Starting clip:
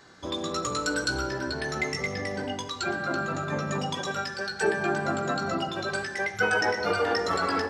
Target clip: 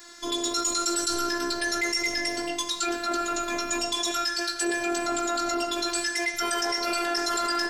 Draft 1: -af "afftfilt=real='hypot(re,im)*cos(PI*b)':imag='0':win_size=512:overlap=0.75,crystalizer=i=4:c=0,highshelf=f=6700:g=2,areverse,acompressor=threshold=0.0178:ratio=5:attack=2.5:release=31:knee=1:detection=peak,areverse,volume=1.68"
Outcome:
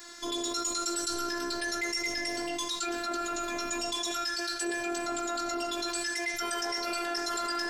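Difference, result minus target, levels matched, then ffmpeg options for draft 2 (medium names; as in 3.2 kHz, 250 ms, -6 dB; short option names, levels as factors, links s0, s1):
compression: peak gain reduction +5.5 dB
-af "afftfilt=real='hypot(re,im)*cos(PI*b)':imag='0':win_size=512:overlap=0.75,crystalizer=i=4:c=0,highshelf=f=6700:g=2,areverse,acompressor=threshold=0.0398:ratio=5:attack=2.5:release=31:knee=1:detection=peak,areverse,volume=1.68"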